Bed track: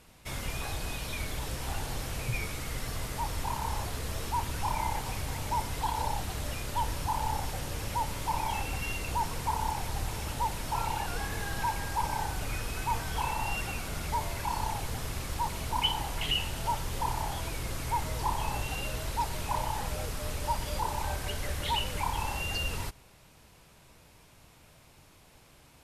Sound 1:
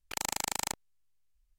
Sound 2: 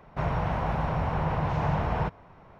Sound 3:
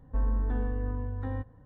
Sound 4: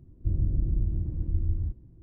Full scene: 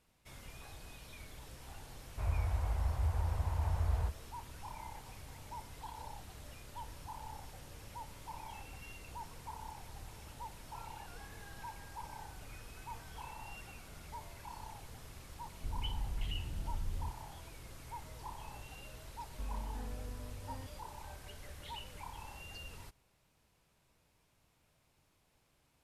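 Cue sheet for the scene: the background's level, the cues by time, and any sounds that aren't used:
bed track -16 dB
2.01 add 2 -16.5 dB + resonant low shelf 110 Hz +11.5 dB, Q 3
15.39 add 4 -8.5 dB + slew limiter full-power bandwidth 2.3 Hz
19.25 add 3 -14 dB
not used: 1

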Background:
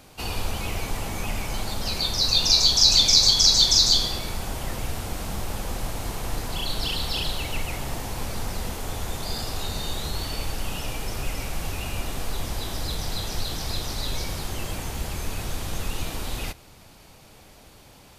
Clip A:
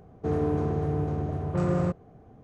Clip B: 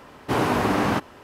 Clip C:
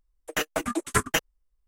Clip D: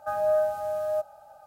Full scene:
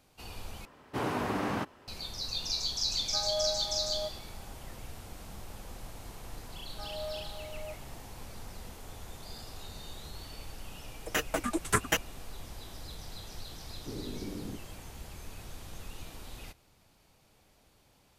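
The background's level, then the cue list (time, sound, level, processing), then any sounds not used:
background -15 dB
0.65 replace with B -10.5 dB
3.07 add D -10 dB
6.72 add D -16.5 dB
10.78 add C -3.5 dB
13.57 add B -16 dB + inverse Chebyshev low-pass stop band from 910 Hz
not used: A

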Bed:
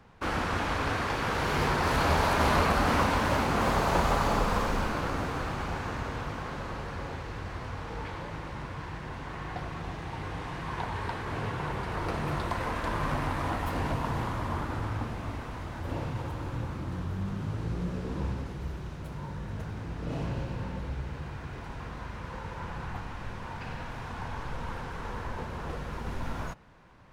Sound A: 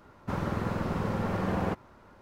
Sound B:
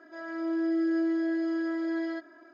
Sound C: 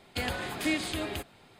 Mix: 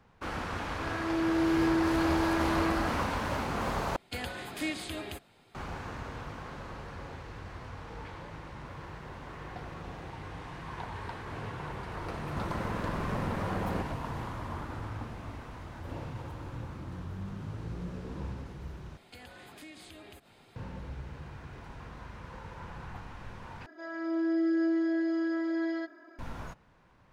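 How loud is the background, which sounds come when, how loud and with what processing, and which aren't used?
bed -6 dB
0.68 add B -0.5 dB
3.96 replace with C -5 dB
8.37 add A -17.5 dB + HPF 270 Hz 24 dB/oct
12.08 add A -5 dB
18.97 replace with C -2 dB + compressor 3:1, threshold -50 dBFS
23.66 replace with B -0.5 dB

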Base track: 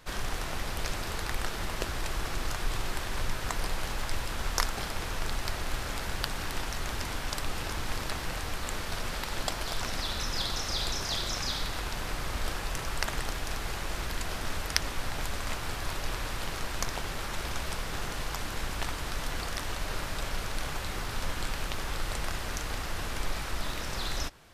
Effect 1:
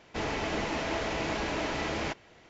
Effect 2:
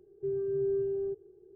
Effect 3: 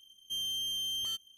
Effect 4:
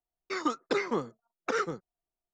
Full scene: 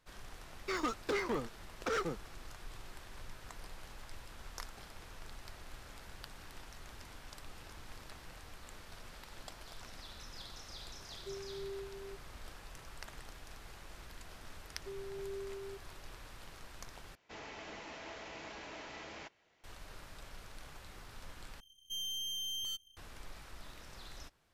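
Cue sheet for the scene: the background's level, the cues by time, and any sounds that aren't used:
base track -17.5 dB
0.38 add 4 -12 dB + sample leveller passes 3
11.03 add 2 -12 dB + reverb removal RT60 0.75 s
14.63 add 2 -13.5 dB
17.15 replace with 1 -13.5 dB + low shelf 470 Hz -8 dB
21.6 replace with 3 -2.5 dB + half-wave gain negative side -7 dB

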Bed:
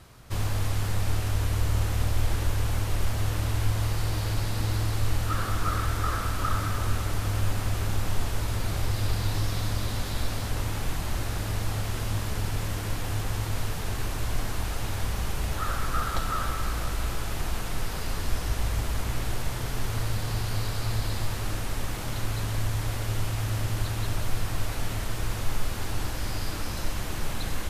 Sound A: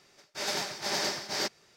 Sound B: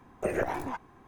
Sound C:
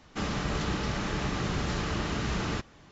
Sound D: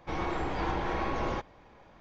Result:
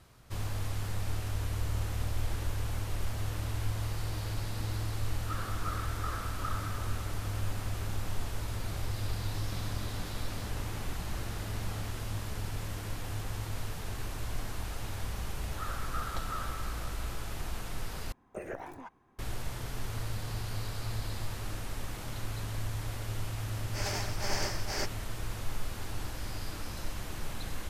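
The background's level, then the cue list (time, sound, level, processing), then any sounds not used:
bed -7.5 dB
9.31 add C -17 dB
18.12 replace with B -11 dB
23.38 add A -3 dB + bell 3800 Hz -13 dB 0.3 oct
not used: D

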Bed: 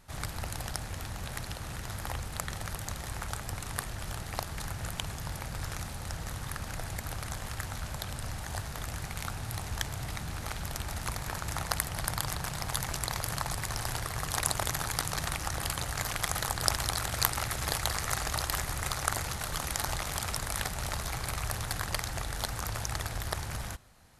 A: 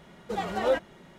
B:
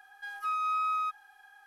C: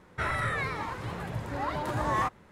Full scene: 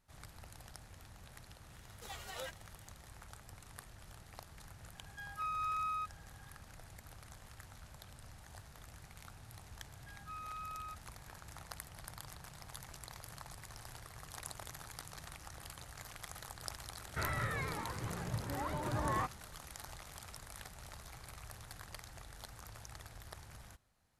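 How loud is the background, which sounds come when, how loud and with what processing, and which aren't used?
bed -17 dB
1.72 add A -1 dB + differentiator
4.95 add B -7.5 dB
9.84 add B -16 dB
16.98 add C -9 dB + low shelf 390 Hz +5 dB

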